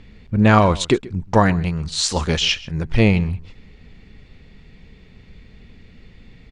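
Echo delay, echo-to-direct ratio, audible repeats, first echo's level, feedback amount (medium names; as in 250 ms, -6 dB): 133 ms, -20.0 dB, 1, -20.0 dB, no regular repeats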